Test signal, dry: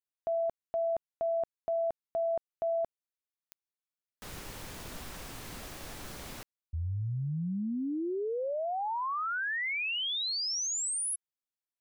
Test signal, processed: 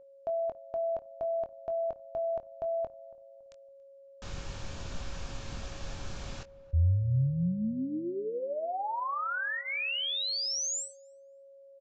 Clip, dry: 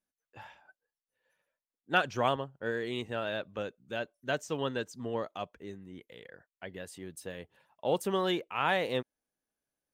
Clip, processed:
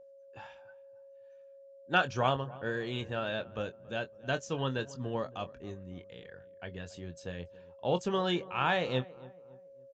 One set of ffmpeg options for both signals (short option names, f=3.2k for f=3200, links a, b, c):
-filter_complex "[0:a]bandreject=f=2k:w=10,asubboost=boost=2.5:cutoff=170,aeval=exprs='val(0)+0.00282*sin(2*PI*550*n/s)':c=same,asplit=2[a][b];[b]adelay=23,volume=-10dB[c];[a][c]amix=inputs=2:normalize=0,asplit=2[d][e];[e]adelay=280,lowpass=f=1.2k:p=1,volume=-18.5dB,asplit=2[f][g];[g]adelay=280,lowpass=f=1.2k:p=1,volume=0.43,asplit=2[h][i];[i]adelay=280,lowpass=f=1.2k:p=1,volume=0.43[j];[d][f][h][j]amix=inputs=4:normalize=0,aresample=16000,aresample=44100"